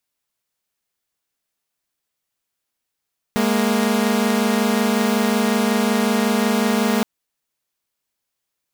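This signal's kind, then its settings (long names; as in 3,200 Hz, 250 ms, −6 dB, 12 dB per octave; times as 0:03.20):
held notes G#3/A#3 saw, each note −16.5 dBFS 3.67 s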